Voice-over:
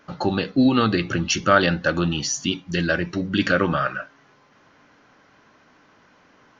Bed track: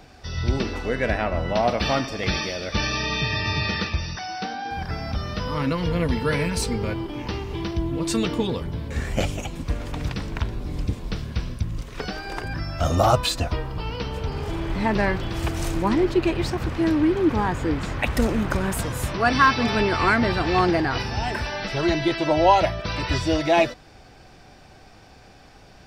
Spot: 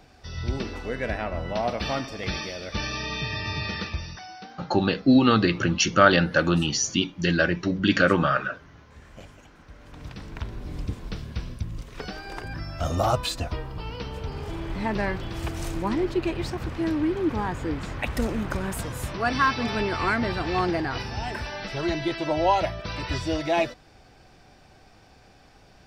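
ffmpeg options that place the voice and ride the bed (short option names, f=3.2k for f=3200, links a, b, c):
-filter_complex "[0:a]adelay=4500,volume=0dB[a];[1:a]volume=11.5dB,afade=t=out:st=3.96:d=0.74:silence=0.149624,afade=t=in:st=9.73:d=0.96:silence=0.141254[b];[a][b]amix=inputs=2:normalize=0"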